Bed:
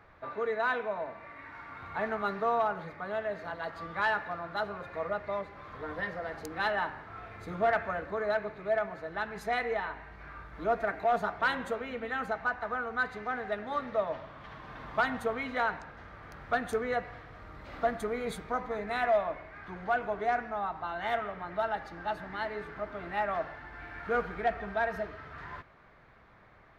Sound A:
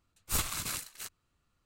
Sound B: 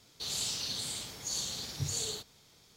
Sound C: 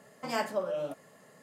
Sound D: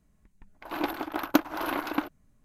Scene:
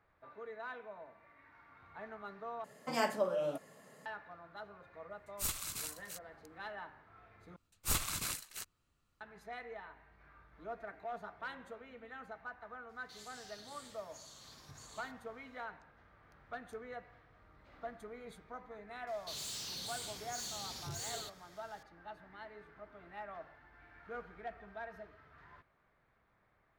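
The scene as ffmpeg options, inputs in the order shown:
-filter_complex "[1:a]asplit=2[s0][s1];[2:a]asplit=2[s2][s3];[0:a]volume=0.168[s4];[s0]highshelf=f=3400:g=6.5[s5];[s2]alimiter=level_in=1.58:limit=0.0631:level=0:latency=1:release=157,volume=0.631[s6];[s3]asoftclip=type=tanh:threshold=0.0133[s7];[s4]asplit=3[s8][s9][s10];[s8]atrim=end=2.644[s11];[3:a]atrim=end=1.42,asetpts=PTS-STARTPTS,volume=0.841[s12];[s9]atrim=start=4.056:end=7.564[s13];[s1]atrim=end=1.65,asetpts=PTS-STARTPTS,volume=0.75[s14];[s10]atrim=start=9.206[s15];[s5]atrim=end=1.65,asetpts=PTS-STARTPTS,volume=0.299,afade=t=in:d=0.004:c=hsin,afade=t=out:st=1.646:d=0.004:c=hsin,adelay=5100[s16];[s6]atrim=end=2.76,asetpts=PTS-STARTPTS,volume=0.141,afade=t=in:d=0.004:c=hsin,afade=t=out:st=2.756:d=0.004:c=hsin,adelay=12890[s17];[s7]atrim=end=2.76,asetpts=PTS-STARTPTS,volume=0.75,afade=t=in:d=0.004:c=hsin,afade=t=out:st=2.756:d=0.004:c=hsin,adelay=19070[s18];[s11][s12]acrossfade=d=0.004:c1=hsin:c2=hsin[s19];[s19][s13]acrossfade=d=0.004:c1=hsin:c2=hsin[s20];[s20][s14]acrossfade=d=0.004:c1=hsin:c2=hsin[s21];[s21][s15]acrossfade=d=0.004:c1=hsin:c2=hsin[s22];[s22][s16][s17][s18]amix=inputs=4:normalize=0"

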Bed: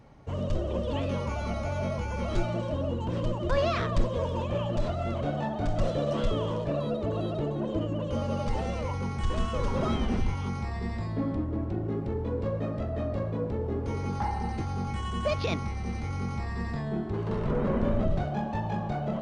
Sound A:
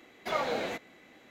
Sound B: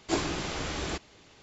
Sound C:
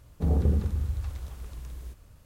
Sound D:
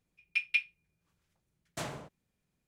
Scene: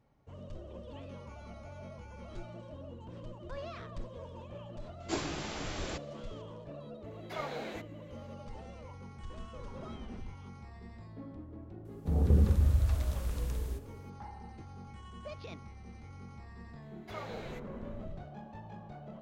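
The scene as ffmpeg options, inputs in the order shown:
-filter_complex "[1:a]asplit=2[s0][s1];[0:a]volume=0.15[s2];[2:a]acontrast=61[s3];[3:a]dynaudnorm=f=110:g=9:m=4.47[s4];[s3]atrim=end=1.42,asetpts=PTS-STARTPTS,volume=0.237,afade=t=in:d=0.004:c=hsin,afade=t=out:st=1.416:d=0.004:c=hsin,adelay=5000[s5];[s0]atrim=end=1.3,asetpts=PTS-STARTPTS,volume=0.376,afade=t=in:d=0.004:c=hsin,afade=t=out:st=1.296:d=0.004:c=hsin,adelay=7040[s6];[s4]atrim=end=2.25,asetpts=PTS-STARTPTS,volume=0.422,afade=t=in:d=0.004:c=hsin,afade=t=out:st=2.246:d=0.004:c=hsin,adelay=11850[s7];[s1]atrim=end=1.3,asetpts=PTS-STARTPTS,volume=0.237,afade=t=in:d=0.004:c=hsin,afade=t=out:st=1.296:d=0.004:c=hsin,adelay=16820[s8];[s2][s5][s6][s7][s8]amix=inputs=5:normalize=0"

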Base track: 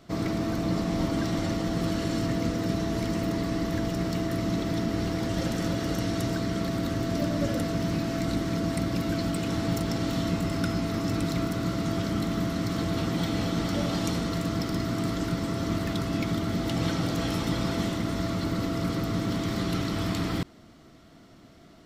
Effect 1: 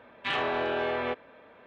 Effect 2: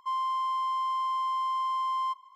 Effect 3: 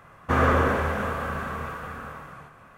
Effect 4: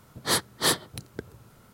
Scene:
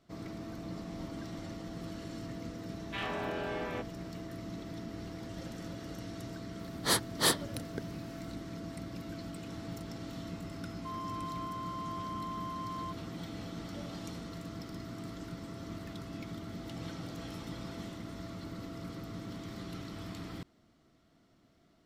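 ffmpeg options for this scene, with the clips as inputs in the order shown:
-filter_complex "[0:a]volume=0.188[s0];[1:a]atrim=end=1.66,asetpts=PTS-STARTPTS,volume=0.376,afade=t=in:d=0.004:c=hsin,afade=t=out:st=1.656:d=0.004:c=hsin,adelay=2680[s1];[4:a]atrim=end=1.73,asetpts=PTS-STARTPTS,volume=0.631,afade=t=in:d=0.004:c=hsin,afade=t=out:st=1.726:d=0.004:c=hsin,adelay=6590[s2];[2:a]atrim=end=2.35,asetpts=PTS-STARTPTS,volume=0.251,afade=t=in:d=0.004:c=hsin,afade=t=out:st=2.346:d=0.004:c=hsin,adelay=10790[s3];[s0][s1][s2][s3]amix=inputs=4:normalize=0"

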